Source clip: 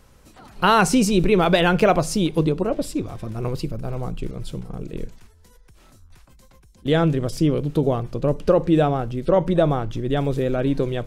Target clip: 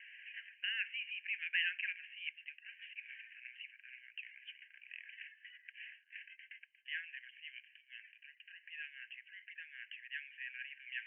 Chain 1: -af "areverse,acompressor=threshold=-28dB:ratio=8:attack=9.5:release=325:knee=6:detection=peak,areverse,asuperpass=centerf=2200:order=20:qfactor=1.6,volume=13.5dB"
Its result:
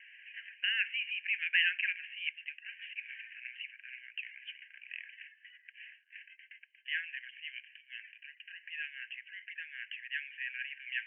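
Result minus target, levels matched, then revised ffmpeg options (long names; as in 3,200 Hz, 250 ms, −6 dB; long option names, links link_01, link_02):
downward compressor: peak gain reduction −6.5 dB
-af "areverse,acompressor=threshold=-35.5dB:ratio=8:attack=9.5:release=325:knee=6:detection=peak,areverse,asuperpass=centerf=2200:order=20:qfactor=1.6,volume=13.5dB"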